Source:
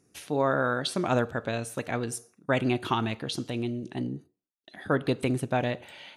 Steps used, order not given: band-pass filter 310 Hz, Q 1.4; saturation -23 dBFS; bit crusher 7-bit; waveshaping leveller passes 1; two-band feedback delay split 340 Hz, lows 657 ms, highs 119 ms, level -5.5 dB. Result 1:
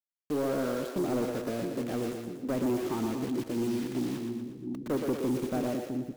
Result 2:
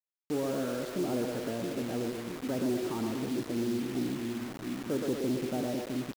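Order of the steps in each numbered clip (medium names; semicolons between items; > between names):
waveshaping leveller > band-pass filter > bit crusher > two-band feedback delay > saturation; waveshaping leveller > two-band feedback delay > saturation > band-pass filter > bit crusher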